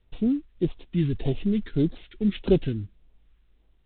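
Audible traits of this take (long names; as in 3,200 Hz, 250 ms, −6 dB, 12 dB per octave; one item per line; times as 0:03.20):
a buzz of ramps at a fixed pitch in blocks of 8 samples
phaser sweep stages 2, 1.7 Hz, lowest notch 660–1,600 Hz
mu-law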